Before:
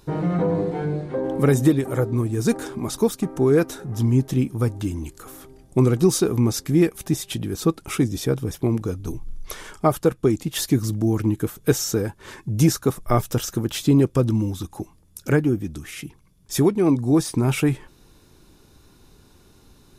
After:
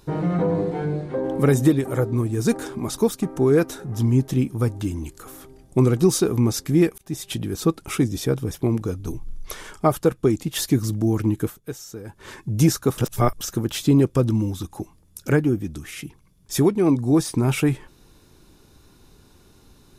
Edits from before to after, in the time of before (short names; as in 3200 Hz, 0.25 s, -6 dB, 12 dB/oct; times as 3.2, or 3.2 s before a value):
6.98–7.3 fade in
11.46–12.19 dip -14 dB, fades 0.15 s
12.98–13.41 reverse